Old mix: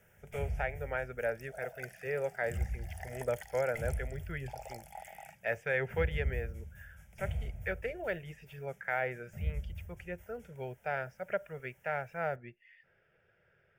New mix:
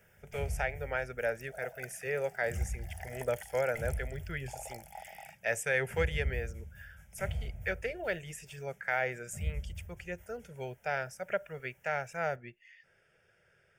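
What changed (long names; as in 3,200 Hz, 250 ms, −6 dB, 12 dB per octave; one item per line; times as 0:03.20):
speech: remove high-frequency loss of the air 300 metres
second sound: add high-shelf EQ 12,000 Hz +5.5 dB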